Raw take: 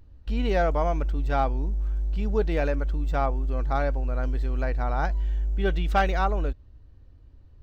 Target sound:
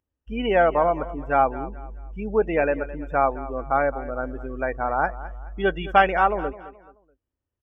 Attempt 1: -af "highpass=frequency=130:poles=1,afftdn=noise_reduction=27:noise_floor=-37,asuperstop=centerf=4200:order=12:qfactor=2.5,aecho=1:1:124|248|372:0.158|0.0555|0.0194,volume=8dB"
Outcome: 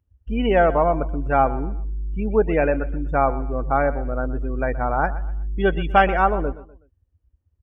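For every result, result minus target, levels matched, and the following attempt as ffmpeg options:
echo 90 ms early; 125 Hz band +7.5 dB
-af "highpass=frequency=130:poles=1,afftdn=noise_reduction=27:noise_floor=-37,asuperstop=centerf=4200:order=12:qfactor=2.5,aecho=1:1:214|428|642:0.158|0.0555|0.0194,volume=8dB"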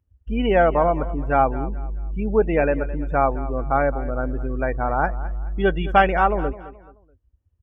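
125 Hz band +7.0 dB
-af "highpass=frequency=410:poles=1,afftdn=noise_reduction=27:noise_floor=-37,asuperstop=centerf=4200:order=12:qfactor=2.5,aecho=1:1:214|428|642:0.158|0.0555|0.0194,volume=8dB"

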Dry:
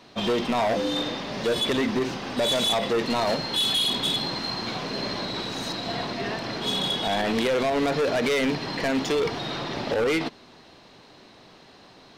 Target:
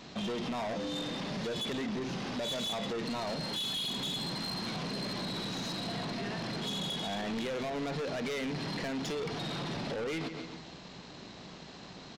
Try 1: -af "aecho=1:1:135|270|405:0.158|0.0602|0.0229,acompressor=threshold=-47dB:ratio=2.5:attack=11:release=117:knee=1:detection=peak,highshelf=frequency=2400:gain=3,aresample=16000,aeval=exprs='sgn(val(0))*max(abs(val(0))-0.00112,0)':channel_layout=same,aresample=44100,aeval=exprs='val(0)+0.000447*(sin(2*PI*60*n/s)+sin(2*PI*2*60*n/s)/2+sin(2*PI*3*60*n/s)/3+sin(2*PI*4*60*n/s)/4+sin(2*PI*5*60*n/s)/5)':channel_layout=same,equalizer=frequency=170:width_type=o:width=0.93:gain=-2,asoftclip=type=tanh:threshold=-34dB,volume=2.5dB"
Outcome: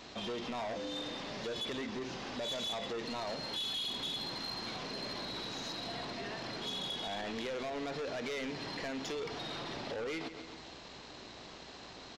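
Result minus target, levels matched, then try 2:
125 Hz band −6.5 dB; downward compressor: peak gain reduction +4 dB
-af "aecho=1:1:135|270|405:0.158|0.0602|0.0229,acompressor=threshold=-40.5dB:ratio=2.5:attack=11:release=117:knee=1:detection=peak,highshelf=frequency=2400:gain=3,aresample=16000,aeval=exprs='sgn(val(0))*max(abs(val(0))-0.00112,0)':channel_layout=same,aresample=44100,aeval=exprs='val(0)+0.000447*(sin(2*PI*60*n/s)+sin(2*PI*2*60*n/s)/2+sin(2*PI*3*60*n/s)/3+sin(2*PI*4*60*n/s)/4+sin(2*PI*5*60*n/s)/5)':channel_layout=same,equalizer=frequency=170:width_type=o:width=0.93:gain=9,asoftclip=type=tanh:threshold=-34dB,volume=2.5dB"

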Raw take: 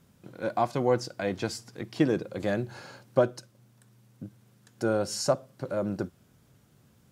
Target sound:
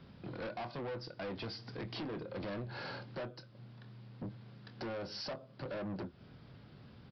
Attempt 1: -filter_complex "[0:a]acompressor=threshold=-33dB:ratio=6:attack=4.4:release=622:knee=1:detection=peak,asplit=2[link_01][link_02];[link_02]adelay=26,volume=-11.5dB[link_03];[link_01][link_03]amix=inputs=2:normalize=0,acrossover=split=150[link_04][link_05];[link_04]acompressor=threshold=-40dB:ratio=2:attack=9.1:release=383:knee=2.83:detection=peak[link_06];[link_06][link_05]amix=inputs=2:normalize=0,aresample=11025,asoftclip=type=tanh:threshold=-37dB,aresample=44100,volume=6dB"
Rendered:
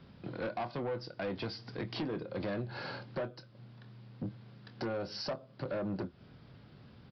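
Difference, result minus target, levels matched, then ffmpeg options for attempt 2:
soft clipping: distortion −5 dB
-filter_complex "[0:a]acompressor=threshold=-33dB:ratio=6:attack=4.4:release=622:knee=1:detection=peak,asplit=2[link_01][link_02];[link_02]adelay=26,volume=-11.5dB[link_03];[link_01][link_03]amix=inputs=2:normalize=0,acrossover=split=150[link_04][link_05];[link_04]acompressor=threshold=-40dB:ratio=2:attack=9.1:release=383:knee=2.83:detection=peak[link_06];[link_06][link_05]amix=inputs=2:normalize=0,aresample=11025,asoftclip=type=tanh:threshold=-44dB,aresample=44100,volume=6dB"

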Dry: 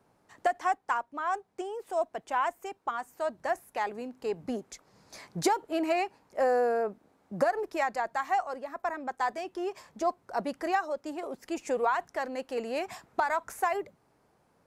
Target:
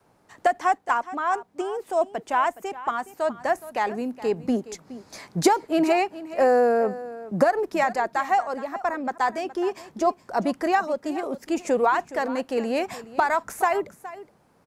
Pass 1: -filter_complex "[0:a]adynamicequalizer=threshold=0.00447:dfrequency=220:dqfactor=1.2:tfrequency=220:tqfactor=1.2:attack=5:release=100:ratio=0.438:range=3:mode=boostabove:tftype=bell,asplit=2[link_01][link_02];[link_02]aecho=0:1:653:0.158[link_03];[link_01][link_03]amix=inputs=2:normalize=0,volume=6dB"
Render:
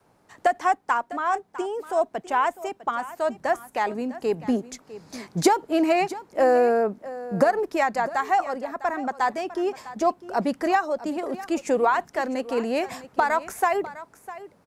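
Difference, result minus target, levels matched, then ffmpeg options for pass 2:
echo 235 ms late
-filter_complex "[0:a]adynamicequalizer=threshold=0.00447:dfrequency=220:dqfactor=1.2:tfrequency=220:tqfactor=1.2:attack=5:release=100:ratio=0.438:range=3:mode=boostabove:tftype=bell,asplit=2[link_01][link_02];[link_02]aecho=0:1:418:0.158[link_03];[link_01][link_03]amix=inputs=2:normalize=0,volume=6dB"

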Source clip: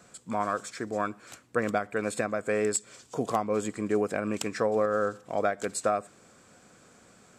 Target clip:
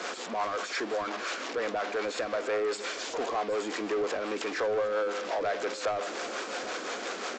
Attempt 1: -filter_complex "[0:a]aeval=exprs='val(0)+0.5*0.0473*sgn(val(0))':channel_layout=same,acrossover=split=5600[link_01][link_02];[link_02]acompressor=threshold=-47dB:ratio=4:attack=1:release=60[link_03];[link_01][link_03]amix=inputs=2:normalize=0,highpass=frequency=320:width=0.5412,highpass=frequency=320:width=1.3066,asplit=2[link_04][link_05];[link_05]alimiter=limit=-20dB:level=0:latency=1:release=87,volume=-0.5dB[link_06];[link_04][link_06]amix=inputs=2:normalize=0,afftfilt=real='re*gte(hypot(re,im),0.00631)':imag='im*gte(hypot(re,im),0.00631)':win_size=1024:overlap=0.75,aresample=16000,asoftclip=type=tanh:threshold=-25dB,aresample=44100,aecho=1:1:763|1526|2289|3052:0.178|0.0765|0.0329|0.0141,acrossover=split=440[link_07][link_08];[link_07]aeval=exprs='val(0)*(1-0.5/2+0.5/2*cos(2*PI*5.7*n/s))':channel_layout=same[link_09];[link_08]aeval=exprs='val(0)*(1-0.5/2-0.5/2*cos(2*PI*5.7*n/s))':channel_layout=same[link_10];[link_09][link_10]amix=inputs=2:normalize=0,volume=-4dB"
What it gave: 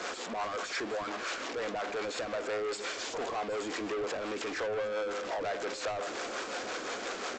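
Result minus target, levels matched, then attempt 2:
soft clipping: distortion +7 dB
-filter_complex "[0:a]aeval=exprs='val(0)+0.5*0.0473*sgn(val(0))':channel_layout=same,acrossover=split=5600[link_01][link_02];[link_02]acompressor=threshold=-47dB:ratio=4:attack=1:release=60[link_03];[link_01][link_03]amix=inputs=2:normalize=0,highpass=frequency=320:width=0.5412,highpass=frequency=320:width=1.3066,asplit=2[link_04][link_05];[link_05]alimiter=limit=-20dB:level=0:latency=1:release=87,volume=-0.5dB[link_06];[link_04][link_06]amix=inputs=2:normalize=0,afftfilt=real='re*gte(hypot(re,im),0.00631)':imag='im*gte(hypot(re,im),0.00631)':win_size=1024:overlap=0.75,aresample=16000,asoftclip=type=tanh:threshold=-17.5dB,aresample=44100,aecho=1:1:763|1526|2289|3052:0.178|0.0765|0.0329|0.0141,acrossover=split=440[link_07][link_08];[link_07]aeval=exprs='val(0)*(1-0.5/2+0.5/2*cos(2*PI*5.7*n/s))':channel_layout=same[link_09];[link_08]aeval=exprs='val(0)*(1-0.5/2-0.5/2*cos(2*PI*5.7*n/s))':channel_layout=same[link_10];[link_09][link_10]amix=inputs=2:normalize=0,volume=-4dB"

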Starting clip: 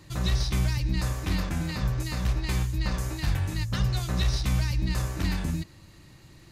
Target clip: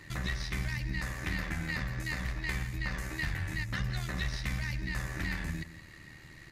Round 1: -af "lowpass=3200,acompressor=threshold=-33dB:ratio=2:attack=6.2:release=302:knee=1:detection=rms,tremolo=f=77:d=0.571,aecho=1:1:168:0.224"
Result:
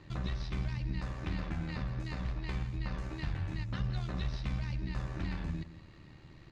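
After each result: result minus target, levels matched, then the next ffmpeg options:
2,000 Hz band −9.5 dB; 4,000 Hz band −4.5 dB
-af "lowpass=3200,acompressor=threshold=-33dB:ratio=2:attack=6.2:release=302:knee=1:detection=rms,equalizer=frequency=1900:width=2.2:gain=14,tremolo=f=77:d=0.571,aecho=1:1:168:0.224"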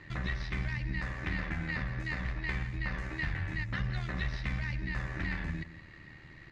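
4,000 Hz band −4.5 dB
-af "acompressor=threshold=-33dB:ratio=2:attack=6.2:release=302:knee=1:detection=rms,equalizer=frequency=1900:width=2.2:gain=14,tremolo=f=77:d=0.571,aecho=1:1:168:0.224"

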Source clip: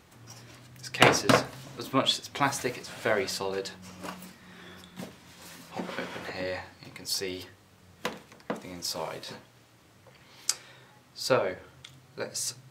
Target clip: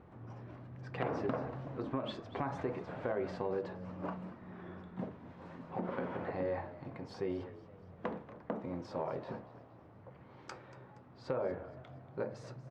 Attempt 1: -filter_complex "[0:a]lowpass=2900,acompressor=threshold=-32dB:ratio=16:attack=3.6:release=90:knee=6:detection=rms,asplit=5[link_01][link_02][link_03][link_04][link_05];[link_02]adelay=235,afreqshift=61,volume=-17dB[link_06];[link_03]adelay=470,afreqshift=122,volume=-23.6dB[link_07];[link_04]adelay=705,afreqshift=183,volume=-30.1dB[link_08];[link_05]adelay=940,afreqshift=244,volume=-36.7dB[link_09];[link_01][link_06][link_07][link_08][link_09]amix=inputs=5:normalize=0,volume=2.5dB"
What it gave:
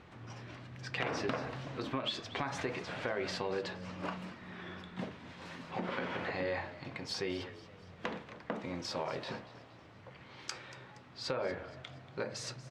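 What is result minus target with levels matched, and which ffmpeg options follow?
4,000 Hz band +13.0 dB
-filter_complex "[0:a]lowpass=980,acompressor=threshold=-32dB:ratio=16:attack=3.6:release=90:knee=6:detection=rms,asplit=5[link_01][link_02][link_03][link_04][link_05];[link_02]adelay=235,afreqshift=61,volume=-17dB[link_06];[link_03]adelay=470,afreqshift=122,volume=-23.6dB[link_07];[link_04]adelay=705,afreqshift=183,volume=-30.1dB[link_08];[link_05]adelay=940,afreqshift=244,volume=-36.7dB[link_09];[link_01][link_06][link_07][link_08][link_09]amix=inputs=5:normalize=0,volume=2.5dB"

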